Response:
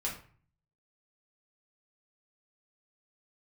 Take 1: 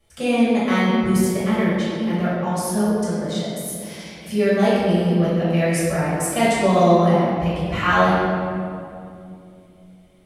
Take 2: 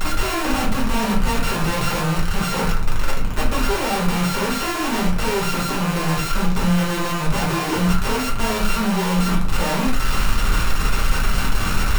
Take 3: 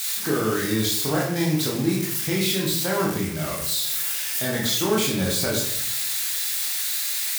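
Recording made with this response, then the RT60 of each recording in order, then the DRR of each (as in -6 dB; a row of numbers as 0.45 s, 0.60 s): 2; 2.6 s, 0.45 s, 0.70 s; -10.5 dB, -4.0 dB, -3.5 dB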